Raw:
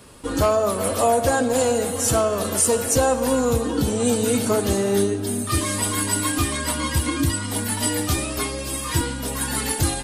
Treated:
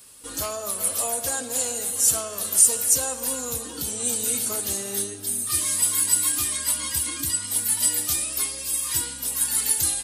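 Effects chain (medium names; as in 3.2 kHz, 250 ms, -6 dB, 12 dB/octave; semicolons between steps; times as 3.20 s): pre-emphasis filter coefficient 0.9; reverse echo 41 ms -21 dB; trim +3.5 dB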